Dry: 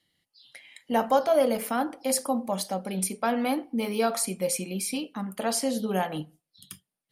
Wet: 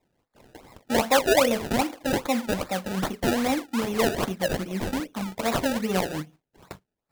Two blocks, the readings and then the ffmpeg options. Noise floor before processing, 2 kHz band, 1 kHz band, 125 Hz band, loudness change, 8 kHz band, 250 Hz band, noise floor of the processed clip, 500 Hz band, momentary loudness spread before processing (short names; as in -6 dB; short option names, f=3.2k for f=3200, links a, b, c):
under -85 dBFS, +7.5 dB, +1.0 dB, +5.0 dB, +2.0 dB, -3.0 dB, +2.5 dB, -84 dBFS, +1.5 dB, 9 LU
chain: -af "acrusher=samples=28:mix=1:aa=0.000001:lfo=1:lforange=28:lforate=2.5,volume=2dB"